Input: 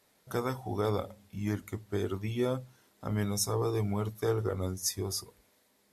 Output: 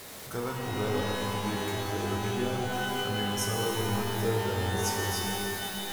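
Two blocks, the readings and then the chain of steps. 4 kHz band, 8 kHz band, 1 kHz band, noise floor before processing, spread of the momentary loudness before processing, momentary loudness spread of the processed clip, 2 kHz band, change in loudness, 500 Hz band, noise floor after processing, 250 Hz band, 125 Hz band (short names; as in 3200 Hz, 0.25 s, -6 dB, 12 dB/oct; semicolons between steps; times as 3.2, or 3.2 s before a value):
+9.0 dB, +2.0 dB, +8.0 dB, -69 dBFS, 7 LU, 4 LU, +12.5 dB, +3.0 dB, +1.5 dB, -43 dBFS, +2.0 dB, +1.0 dB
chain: zero-crossing step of -35 dBFS; shimmer reverb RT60 3.3 s, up +12 st, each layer -2 dB, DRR 0 dB; gain -5 dB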